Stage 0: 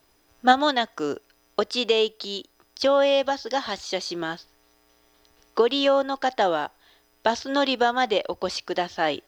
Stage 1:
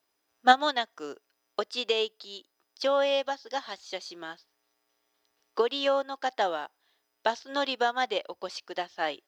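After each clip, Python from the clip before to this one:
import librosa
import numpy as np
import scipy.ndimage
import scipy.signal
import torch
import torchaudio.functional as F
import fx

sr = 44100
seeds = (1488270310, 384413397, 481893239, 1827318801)

y = fx.highpass(x, sr, hz=460.0, slope=6)
y = fx.upward_expand(y, sr, threshold_db=-39.0, expansion=1.5)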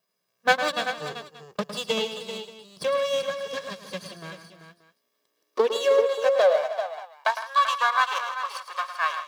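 y = fx.lower_of_two(x, sr, delay_ms=1.8)
y = fx.echo_multitap(y, sr, ms=(107, 160, 312, 387, 580), db=(-10.5, -15.0, -16.5, -10.0, -20.0))
y = fx.filter_sweep_highpass(y, sr, from_hz=180.0, to_hz=1100.0, start_s=4.65, end_s=7.6, q=5.8)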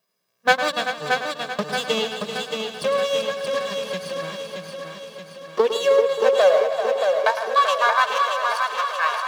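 y = fx.echo_feedback(x, sr, ms=626, feedback_pct=55, wet_db=-5)
y = y * librosa.db_to_amplitude(3.0)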